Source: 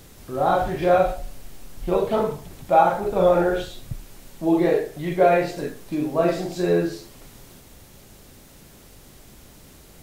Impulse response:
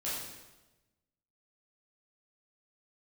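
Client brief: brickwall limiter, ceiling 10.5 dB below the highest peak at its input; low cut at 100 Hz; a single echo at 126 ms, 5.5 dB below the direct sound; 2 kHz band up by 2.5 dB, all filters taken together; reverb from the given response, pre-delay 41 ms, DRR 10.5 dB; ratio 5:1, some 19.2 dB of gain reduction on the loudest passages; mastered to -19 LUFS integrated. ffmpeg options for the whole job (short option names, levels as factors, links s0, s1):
-filter_complex "[0:a]highpass=100,equalizer=f=2000:t=o:g=3.5,acompressor=threshold=0.02:ratio=5,alimiter=level_in=2.66:limit=0.0631:level=0:latency=1,volume=0.376,aecho=1:1:126:0.531,asplit=2[s0][s1];[1:a]atrim=start_sample=2205,adelay=41[s2];[s1][s2]afir=irnorm=-1:irlink=0,volume=0.188[s3];[s0][s3]amix=inputs=2:normalize=0,volume=13.3"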